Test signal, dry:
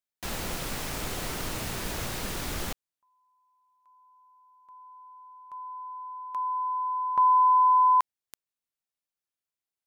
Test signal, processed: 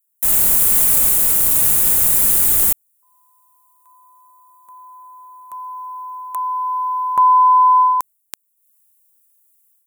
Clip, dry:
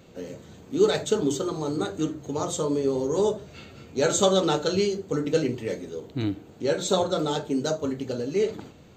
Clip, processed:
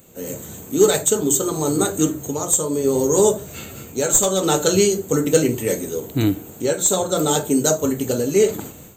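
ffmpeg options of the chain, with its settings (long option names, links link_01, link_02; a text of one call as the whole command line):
ffmpeg -i in.wav -af "aexciter=amount=7.4:drive=9.3:freq=7400,aeval=exprs='clip(val(0),-1,0.266)':channel_layout=same,dynaudnorm=framelen=150:gausssize=3:maxgain=10dB,volume=-1dB" out.wav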